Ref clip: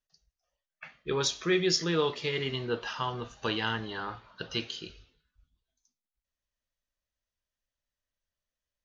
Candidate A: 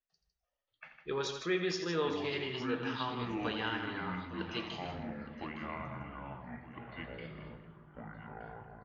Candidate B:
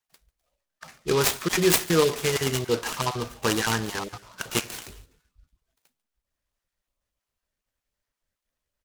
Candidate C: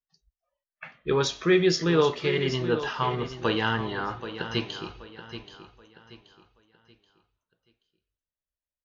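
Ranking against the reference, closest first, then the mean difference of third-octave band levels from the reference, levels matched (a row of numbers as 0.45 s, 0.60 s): C, A, B; 3.5 dB, 6.0 dB, 9.0 dB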